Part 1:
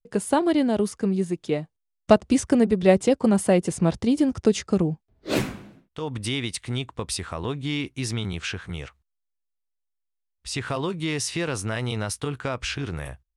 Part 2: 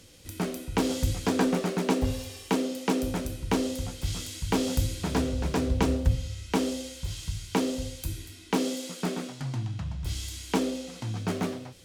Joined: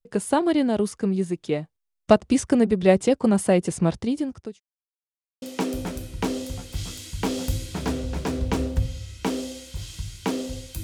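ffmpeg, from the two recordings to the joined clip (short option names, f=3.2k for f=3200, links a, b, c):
-filter_complex "[0:a]apad=whole_dur=10.83,atrim=end=10.83,asplit=2[a][b];[a]atrim=end=4.6,asetpts=PTS-STARTPTS,afade=t=out:st=3.85:d=0.75[c];[b]atrim=start=4.6:end=5.42,asetpts=PTS-STARTPTS,volume=0[d];[1:a]atrim=start=2.71:end=8.12,asetpts=PTS-STARTPTS,afade=t=in:d=0.004:c=hsin[e];[c][d][e]concat=n=3:v=0:a=1"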